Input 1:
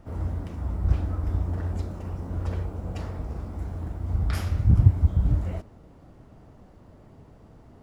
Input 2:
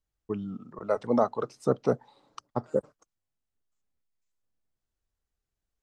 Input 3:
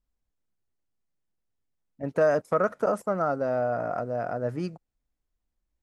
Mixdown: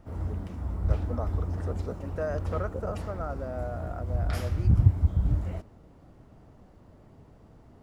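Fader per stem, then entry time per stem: -3.0, -12.5, -10.0 dB; 0.00, 0.00, 0.00 s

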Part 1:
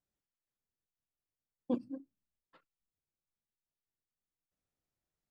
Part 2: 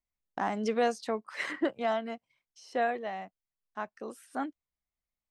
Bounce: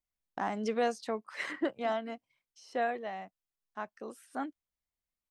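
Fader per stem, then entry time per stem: -17.0, -2.5 dB; 0.15, 0.00 s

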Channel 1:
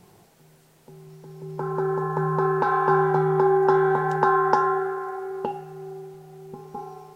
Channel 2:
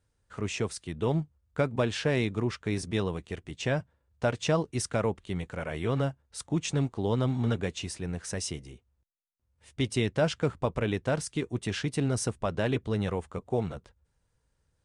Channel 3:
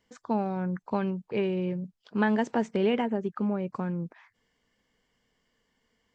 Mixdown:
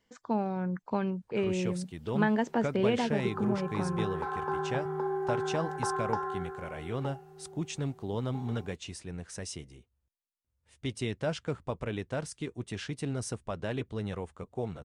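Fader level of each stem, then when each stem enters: -13.0, -6.0, -2.0 dB; 1.60, 1.05, 0.00 s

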